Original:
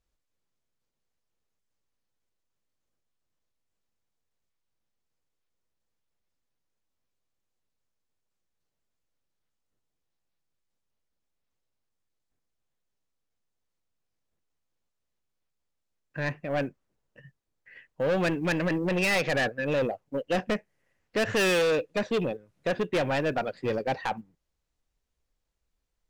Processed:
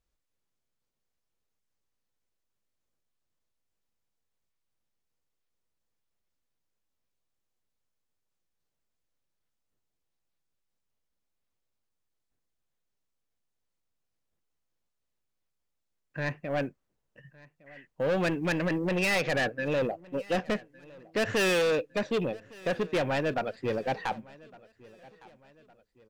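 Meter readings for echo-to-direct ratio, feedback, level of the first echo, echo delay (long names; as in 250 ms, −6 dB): −22.0 dB, 43%, −23.0 dB, 1,160 ms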